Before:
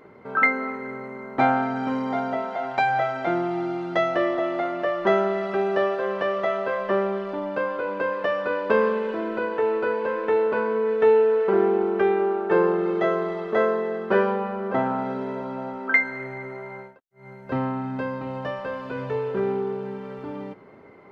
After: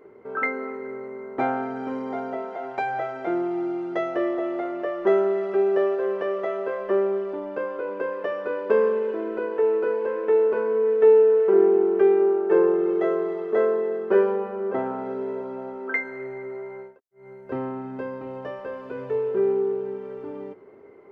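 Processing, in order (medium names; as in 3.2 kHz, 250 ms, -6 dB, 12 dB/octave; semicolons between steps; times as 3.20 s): fifteen-band graphic EQ 160 Hz -5 dB, 400 Hz +11 dB, 4 kHz -6 dB; trim -6.5 dB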